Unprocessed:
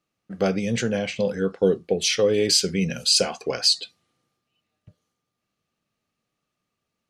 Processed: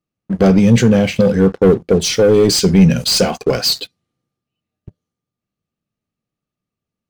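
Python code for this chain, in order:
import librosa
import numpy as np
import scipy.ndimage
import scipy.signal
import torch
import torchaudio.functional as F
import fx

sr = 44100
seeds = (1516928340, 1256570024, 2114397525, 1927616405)

y = fx.peak_eq(x, sr, hz=2400.0, db=-6.0, octaves=1.3, at=(1.9, 2.57))
y = fx.leveller(y, sr, passes=3)
y = fx.low_shelf(y, sr, hz=390.0, db=12.0)
y = y * librosa.db_to_amplitude(-3.5)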